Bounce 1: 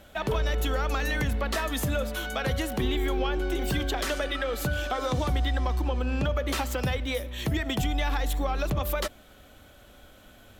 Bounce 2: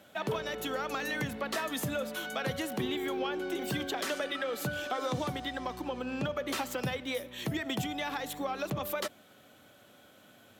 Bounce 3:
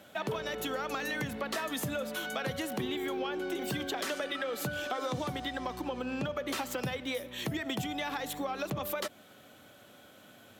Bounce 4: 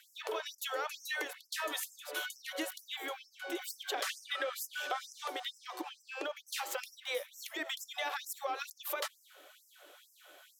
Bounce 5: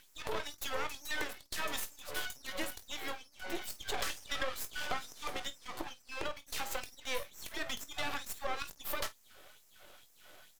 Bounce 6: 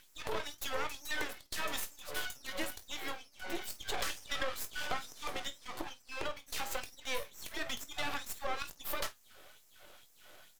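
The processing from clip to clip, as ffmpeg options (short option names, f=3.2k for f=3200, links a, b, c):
-af "highpass=f=120:w=0.5412,highpass=f=120:w=1.3066,volume=-4dB"
-af "acompressor=threshold=-36dB:ratio=2,volume=2.5dB"
-af "bandreject=f=73.72:t=h:w=4,bandreject=f=147.44:t=h:w=4,bandreject=f=221.16:t=h:w=4,bandreject=f=294.88:t=h:w=4,bandreject=f=368.6:t=h:w=4,bandreject=f=442.32:t=h:w=4,bandreject=f=516.04:t=h:w=4,bandreject=f=589.76:t=h:w=4,bandreject=f=663.48:t=h:w=4,bandreject=f=737.2:t=h:w=4,bandreject=f=810.92:t=h:w=4,bandreject=f=884.64:t=h:w=4,bandreject=f=958.36:t=h:w=4,bandreject=f=1.03208k:t=h:w=4,bandreject=f=1.1058k:t=h:w=4,afftfilt=real='re*gte(b*sr/1024,280*pow(5100/280,0.5+0.5*sin(2*PI*2.2*pts/sr)))':imag='im*gte(b*sr/1024,280*pow(5100/280,0.5+0.5*sin(2*PI*2.2*pts/sr)))':win_size=1024:overlap=0.75"
-af "aeval=exprs='max(val(0),0)':c=same,aecho=1:1:21|50:0.251|0.141,volume=3.5dB"
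-af "flanger=delay=5.4:depth=4.8:regen=-78:speed=1:shape=triangular,volume=4.5dB"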